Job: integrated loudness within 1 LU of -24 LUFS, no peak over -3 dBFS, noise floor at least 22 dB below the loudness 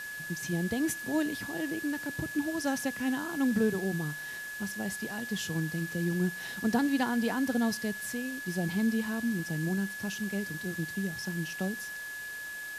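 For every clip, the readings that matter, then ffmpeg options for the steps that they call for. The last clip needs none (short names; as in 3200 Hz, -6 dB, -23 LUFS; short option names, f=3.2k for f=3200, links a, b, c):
steady tone 1700 Hz; tone level -38 dBFS; noise floor -40 dBFS; noise floor target -54 dBFS; loudness -32.0 LUFS; peak -15.0 dBFS; loudness target -24.0 LUFS
-> -af "bandreject=f=1.7k:w=30"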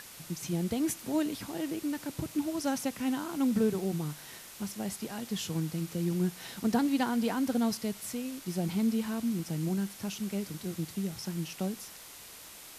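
steady tone none; noise floor -49 dBFS; noise floor target -55 dBFS
-> -af "afftdn=nr=6:nf=-49"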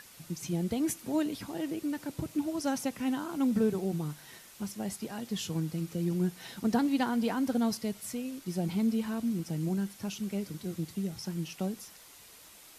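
noise floor -54 dBFS; noise floor target -55 dBFS
-> -af "afftdn=nr=6:nf=-54"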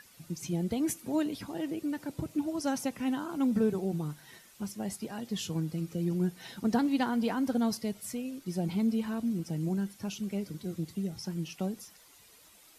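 noise floor -58 dBFS; loudness -33.0 LUFS; peak -16.0 dBFS; loudness target -24.0 LUFS
-> -af "volume=9dB"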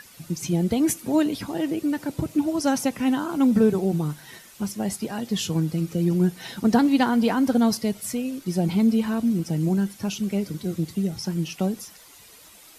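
loudness -24.0 LUFS; peak -7.0 dBFS; noise floor -49 dBFS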